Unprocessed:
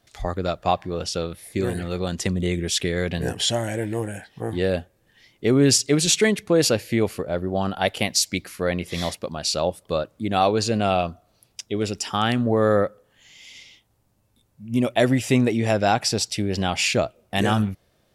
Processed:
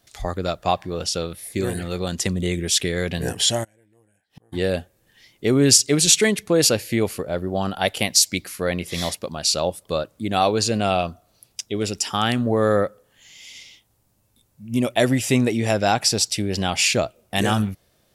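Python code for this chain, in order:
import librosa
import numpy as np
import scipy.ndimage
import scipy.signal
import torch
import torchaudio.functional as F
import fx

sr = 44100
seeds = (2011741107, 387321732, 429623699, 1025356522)

y = fx.high_shelf(x, sr, hz=4800.0, db=8.0)
y = fx.gate_flip(y, sr, shuts_db=-31.0, range_db=-33, at=(3.63, 4.52), fade=0.02)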